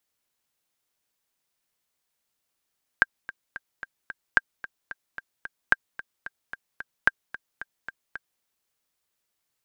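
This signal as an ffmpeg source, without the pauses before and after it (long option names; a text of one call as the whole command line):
ffmpeg -f lavfi -i "aevalsrc='pow(10,(-3.5-18*gte(mod(t,5*60/222),60/222))/20)*sin(2*PI*1590*mod(t,60/222))*exp(-6.91*mod(t,60/222)/0.03)':duration=5.4:sample_rate=44100" out.wav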